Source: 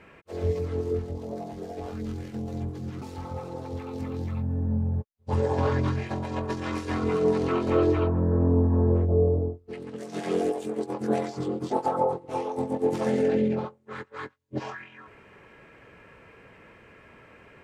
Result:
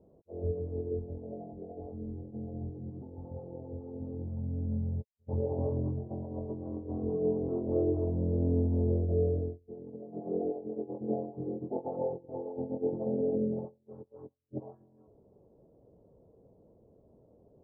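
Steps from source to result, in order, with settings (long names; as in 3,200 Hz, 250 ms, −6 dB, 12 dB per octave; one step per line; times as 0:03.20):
Butterworth low-pass 700 Hz 36 dB per octave
level −6.5 dB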